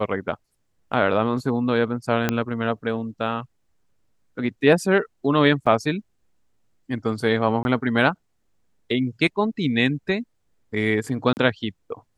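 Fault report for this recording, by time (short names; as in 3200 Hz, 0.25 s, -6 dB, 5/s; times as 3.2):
2.29 pop -6 dBFS
5.66–5.67 gap 6 ms
7.63–7.65 gap 21 ms
11.33–11.37 gap 39 ms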